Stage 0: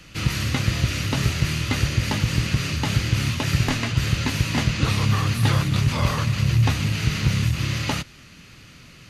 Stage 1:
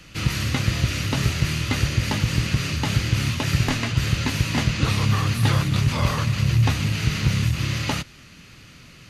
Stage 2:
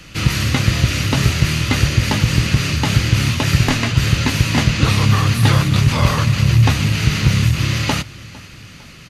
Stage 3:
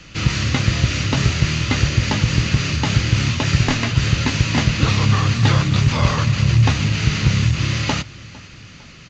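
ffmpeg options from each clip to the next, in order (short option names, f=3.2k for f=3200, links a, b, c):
-af anull
-af "aecho=1:1:454|908|1362:0.0841|0.0412|0.0202,volume=6.5dB"
-af "volume=-2dB" -ar 16000 -c:a pcm_alaw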